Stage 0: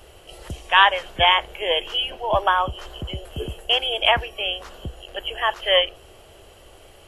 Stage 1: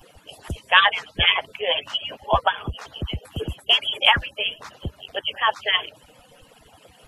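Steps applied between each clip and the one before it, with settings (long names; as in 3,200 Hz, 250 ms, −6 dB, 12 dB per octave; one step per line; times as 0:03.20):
harmonic-percussive split with one part muted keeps percussive
level +3 dB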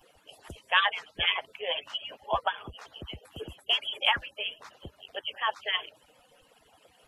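bass and treble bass −8 dB, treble −1 dB
level −8.5 dB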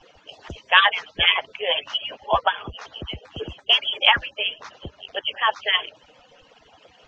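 elliptic low-pass filter 6,300 Hz, stop band 50 dB
level +9 dB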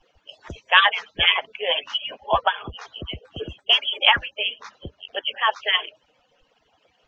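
noise reduction from a noise print of the clip's start 11 dB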